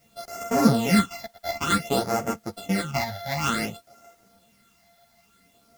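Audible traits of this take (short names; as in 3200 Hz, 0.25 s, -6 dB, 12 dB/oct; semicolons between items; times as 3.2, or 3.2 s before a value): a buzz of ramps at a fixed pitch in blocks of 64 samples; phasing stages 8, 0.55 Hz, lowest notch 340–3800 Hz; a quantiser's noise floor 12-bit, dither triangular; a shimmering, thickened sound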